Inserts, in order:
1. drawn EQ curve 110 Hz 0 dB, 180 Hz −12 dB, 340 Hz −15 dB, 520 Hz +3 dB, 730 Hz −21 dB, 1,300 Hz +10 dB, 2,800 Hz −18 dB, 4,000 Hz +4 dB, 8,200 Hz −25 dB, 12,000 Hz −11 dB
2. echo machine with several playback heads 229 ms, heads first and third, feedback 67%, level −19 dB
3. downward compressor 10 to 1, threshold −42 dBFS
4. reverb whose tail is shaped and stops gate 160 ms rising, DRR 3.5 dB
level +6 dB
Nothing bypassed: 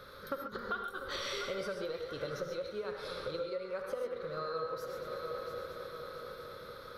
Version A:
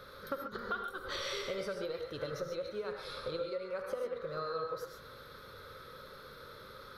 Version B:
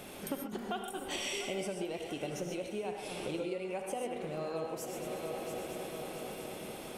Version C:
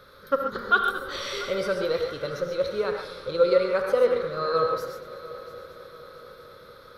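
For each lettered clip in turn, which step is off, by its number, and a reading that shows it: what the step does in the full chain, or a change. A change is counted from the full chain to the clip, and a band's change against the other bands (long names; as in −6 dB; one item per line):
2, change in momentary loudness spread +6 LU
1, change in momentary loudness spread −2 LU
3, average gain reduction 7.0 dB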